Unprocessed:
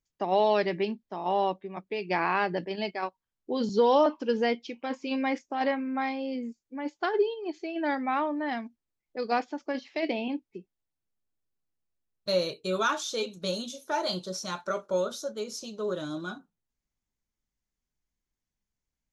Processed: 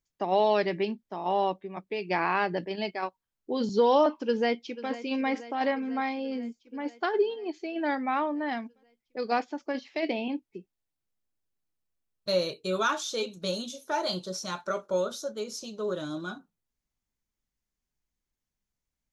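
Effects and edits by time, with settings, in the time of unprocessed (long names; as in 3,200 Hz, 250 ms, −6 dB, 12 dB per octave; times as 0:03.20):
0:04.18–0:04.91: delay throw 490 ms, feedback 70%, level −15 dB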